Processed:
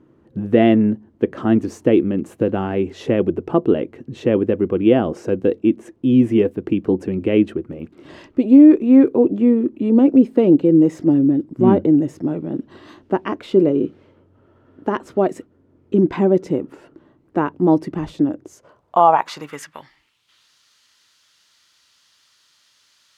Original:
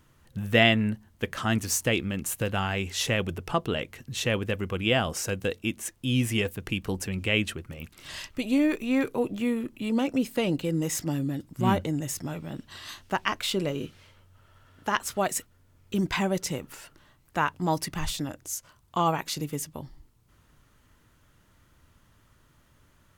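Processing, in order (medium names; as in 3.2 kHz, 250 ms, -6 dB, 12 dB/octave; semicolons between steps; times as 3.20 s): band-pass sweep 330 Hz -> 4.6 kHz, 18.42–20.50 s; loudness maximiser +19.5 dB; trim -1 dB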